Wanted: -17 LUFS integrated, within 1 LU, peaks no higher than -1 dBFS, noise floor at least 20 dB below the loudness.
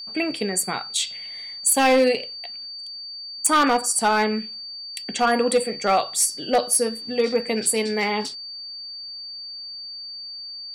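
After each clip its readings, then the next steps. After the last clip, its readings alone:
clipped samples 0.5%; clipping level -11.5 dBFS; steady tone 4.6 kHz; tone level -33 dBFS; loudness -23.0 LUFS; peak level -11.5 dBFS; loudness target -17.0 LUFS
-> clip repair -11.5 dBFS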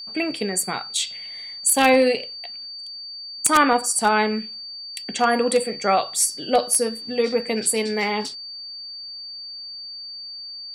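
clipped samples 0.0%; steady tone 4.6 kHz; tone level -33 dBFS
-> band-stop 4.6 kHz, Q 30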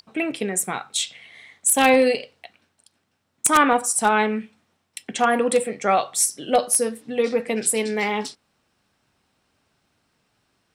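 steady tone not found; loudness -21.0 LUFS; peak level -2.5 dBFS; loudness target -17.0 LUFS
-> trim +4 dB; peak limiter -1 dBFS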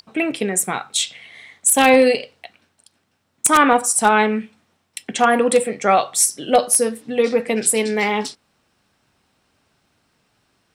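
loudness -17.0 LUFS; peak level -1.0 dBFS; noise floor -68 dBFS

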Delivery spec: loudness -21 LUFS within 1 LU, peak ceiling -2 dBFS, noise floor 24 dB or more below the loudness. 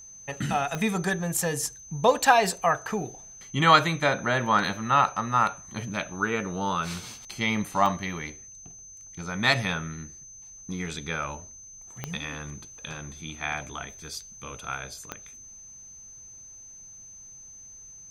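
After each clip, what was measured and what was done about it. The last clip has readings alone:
clicks found 4; steady tone 6.2 kHz; tone level -44 dBFS; loudness -26.5 LUFS; peak level -5.5 dBFS; loudness target -21.0 LUFS
-> de-click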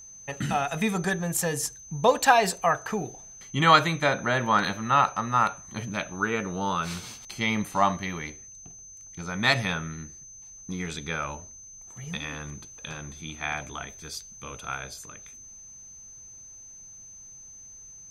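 clicks found 0; steady tone 6.2 kHz; tone level -44 dBFS
-> band-stop 6.2 kHz, Q 30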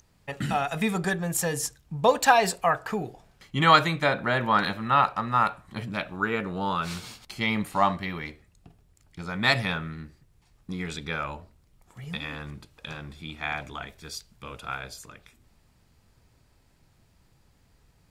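steady tone not found; loudness -26.0 LUFS; peak level -5.5 dBFS; loudness target -21.0 LUFS
-> trim +5 dB; peak limiter -2 dBFS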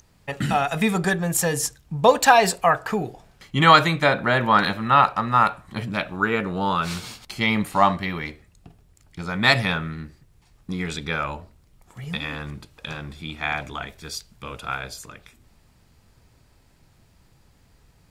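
loudness -21.5 LUFS; peak level -2.0 dBFS; noise floor -58 dBFS

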